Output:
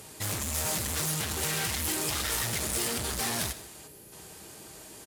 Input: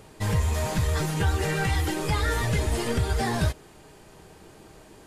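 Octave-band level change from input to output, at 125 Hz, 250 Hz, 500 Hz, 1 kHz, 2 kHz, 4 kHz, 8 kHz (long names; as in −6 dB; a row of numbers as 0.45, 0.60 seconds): −12.0, −7.5, −8.0, −6.5, −4.0, +2.5, +7.5 decibels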